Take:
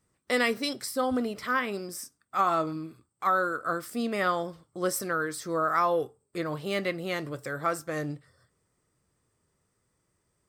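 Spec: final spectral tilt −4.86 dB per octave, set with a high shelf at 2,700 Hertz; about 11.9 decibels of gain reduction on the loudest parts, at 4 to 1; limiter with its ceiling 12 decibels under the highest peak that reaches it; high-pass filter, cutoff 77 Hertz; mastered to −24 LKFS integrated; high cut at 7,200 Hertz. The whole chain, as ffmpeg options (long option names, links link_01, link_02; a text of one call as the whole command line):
ffmpeg -i in.wav -af "highpass=77,lowpass=7200,highshelf=frequency=2700:gain=-4,acompressor=threshold=-36dB:ratio=4,volume=18dB,alimiter=limit=-14.5dB:level=0:latency=1" out.wav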